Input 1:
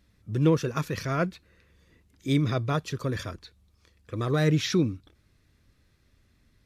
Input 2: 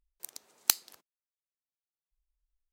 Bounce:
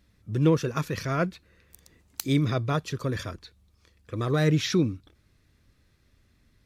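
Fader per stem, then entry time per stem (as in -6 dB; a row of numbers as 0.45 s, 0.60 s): +0.5 dB, -10.5 dB; 0.00 s, 1.50 s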